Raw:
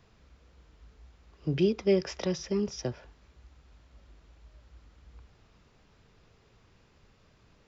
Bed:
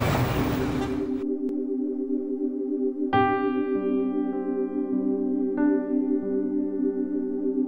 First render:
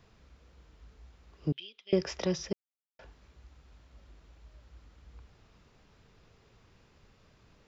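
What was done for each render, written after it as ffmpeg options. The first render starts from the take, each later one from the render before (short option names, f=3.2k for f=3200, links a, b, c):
-filter_complex "[0:a]asettb=1/sr,asplit=3[a][b][c];[a]atrim=end=1.524[d];[b]atrim=start=1.52:end=1.93,asetpts=PTS-STARTPTS,afade=t=in:d=0.004:c=qsin,afade=t=out:st=0.406:d=0.004:c=qsin,bandpass=f=3.2k:t=q:w=5.9[e];[c]atrim=start=1.926[f];[d][e]acrossfade=d=0.004:c1=hsin:c2=qsin[g];[g][f]acrossfade=d=0.004:c1=qsin:c2=hsin,asplit=3[h][i][j];[h]atrim=end=2.53,asetpts=PTS-STARTPTS,afade=t=out:st=2.526:d=0.004:c=hsin[k];[i]atrim=start=2.53:end=2.99,asetpts=PTS-STARTPTS,volume=0[l];[j]atrim=start=2.99,asetpts=PTS-STARTPTS,afade=t=in:d=0.004:c=hsin[m];[k][l][m]concat=n=3:v=0:a=1"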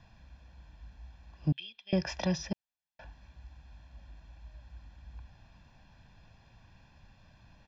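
-af "lowpass=5.3k,aecho=1:1:1.2:0.81"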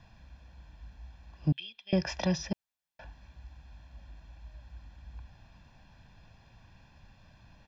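-af "volume=1.5dB"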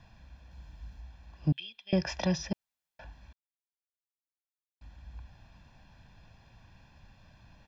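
-filter_complex "[0:a]asettb=1/sr,asplit=3[a][b][c];[a]atrim=end=0.514[d];[b]atrim=start=0.51:end=1.01,asetpts=PTS-STARTPTS,afade=t=in:d=0.004:c=qsin,afade=t=out:st=0.496:d=0.004:c=qsin,bass=f=250:g=3,treble=f=4k:g=4[e];[c]atrim=start=1.006[f];[d][e]acrossfade=d=0.004:c1=hsin:c2=qsin[g];[g][f]acrossfade=d=0.004:c1=qsin:c2=hsin,asplit=3[h][i][j];[h]atrim=end=3.33,asetpts=PTS-STARTPTS,afade=t=out:st=3.326:d=0.004:c=hsin[k];[i]atrim=start=3.33:end=4.81,asetpts=PTS-STARTPTS,volume=0[l];[j]atrim=start=4.81,asetpts=PTS-STARTPTS,afade=t=in:d=0.004:c=hsin[m];[k][l][m]concat=n=3:v=0:a=1"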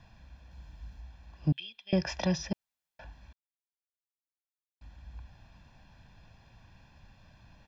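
-af anull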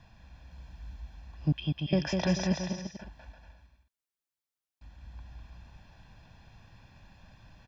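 -af "aecho=1:1:200|340|438|506.6|554.6:0.631|0.398|0.251|0.158|0.1"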